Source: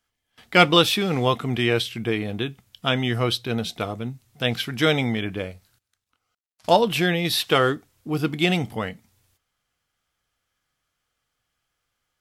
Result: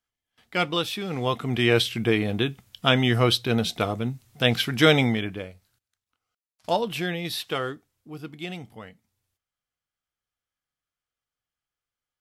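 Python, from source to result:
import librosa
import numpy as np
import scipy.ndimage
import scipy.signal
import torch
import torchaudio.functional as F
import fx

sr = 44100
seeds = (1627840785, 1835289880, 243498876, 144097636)

y = fx.gain(x, sr, db=fx.line((0.91, -9.5), (1.8, 2.5), (5.03, 2.5), (5.49, -7.0), (7.25, -7.0), (8.18, -14.0)))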